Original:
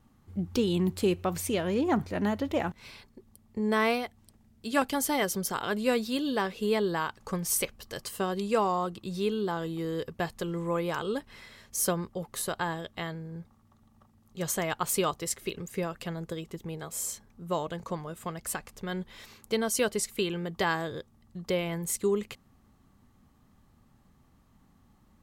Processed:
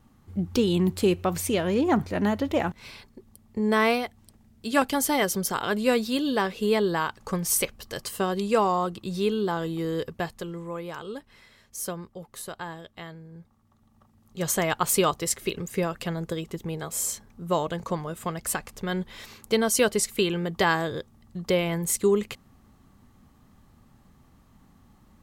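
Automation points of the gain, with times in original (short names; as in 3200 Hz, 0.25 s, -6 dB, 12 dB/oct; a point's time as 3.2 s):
10.02 s +4 dB
10.71 s -5 dB
13.31 s -5 dB
14.59 s +5.5 dB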